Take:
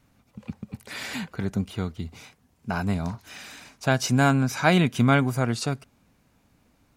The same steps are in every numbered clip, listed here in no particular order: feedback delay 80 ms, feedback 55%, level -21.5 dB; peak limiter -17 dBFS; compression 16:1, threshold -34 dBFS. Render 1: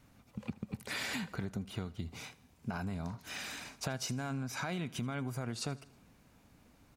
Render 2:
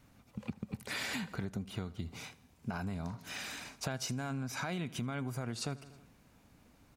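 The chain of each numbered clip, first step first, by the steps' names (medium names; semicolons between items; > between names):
peak limiter > compression > feedback delay; peak limiter > feedback delay > compression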